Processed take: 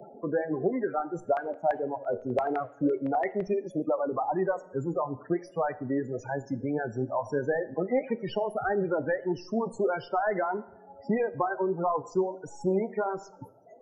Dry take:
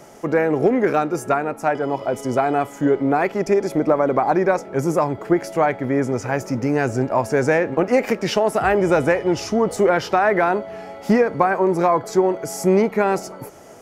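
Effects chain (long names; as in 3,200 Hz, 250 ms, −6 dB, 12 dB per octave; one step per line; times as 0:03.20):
stylus tracing distortion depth 0.042 ms
hum removal 330.8 Hz, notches 29
reverb reduction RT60 1.5 s
flanger 1.6 Hz, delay 4.1 ms, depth 7.2 ms, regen +72%
spectral peaks only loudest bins 16
0:01.20–0:03.42: auto-filter low-pass square 5.9 Hz 650–2,200 Hz
dense smooth reverb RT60 0.71 s, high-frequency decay 0.75×, DRR 15 dB
multiband upward and downward compressor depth 40%
level −5.5 dB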